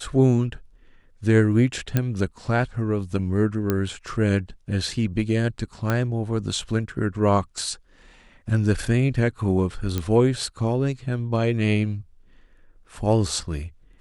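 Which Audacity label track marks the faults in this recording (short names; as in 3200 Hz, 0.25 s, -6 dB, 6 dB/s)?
1.970000	1.970000	pop -8 dBFS
3.700000	3.700000	pop -9 dBFS
5.900000	5.900000	pop -10 dBFS
9.980000	9.980000	pop -11 dBFS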